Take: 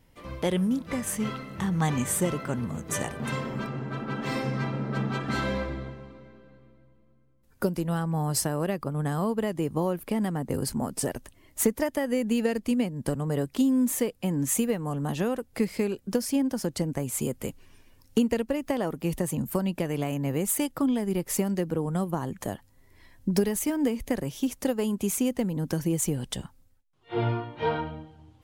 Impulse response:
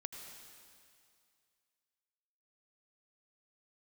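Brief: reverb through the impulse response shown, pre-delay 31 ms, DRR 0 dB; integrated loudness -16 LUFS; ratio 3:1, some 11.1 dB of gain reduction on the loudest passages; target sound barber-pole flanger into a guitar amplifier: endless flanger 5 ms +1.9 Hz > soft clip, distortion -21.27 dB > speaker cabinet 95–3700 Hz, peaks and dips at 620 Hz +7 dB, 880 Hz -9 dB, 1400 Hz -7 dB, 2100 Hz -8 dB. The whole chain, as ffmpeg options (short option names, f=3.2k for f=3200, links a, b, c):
-filter_complex "[0:a]acompressor=threshold=-34dB:ratio=3,asplit=2[a][b];[1:a]atrim=start_sample=2205,adelay=31[c];[b][c]afir=irnorm=-1:irlink=0,volume=2.5dB[d];[a][d]amix=inputs=2:normalize=0,asplit=2[e][f];[f]adelay=5,afreqshift=1.9[g];[e][g]amix=inputs=2:normalize=1,asoftclip=threshold=-25.5dB,highpass=95,equalizer=f=620:t=q:w=4:g=7,equalizer=f=880:t=q:w=4:g=-9,equalizer=f=1.4k:t=q:w=4:g=-7,equalizer=f=2.1k:t=q:w=4:g=-8,lowpass=f=3.7k:w=0.5412,lowpass=f=3.7k:w=1.3066,volume=22dB"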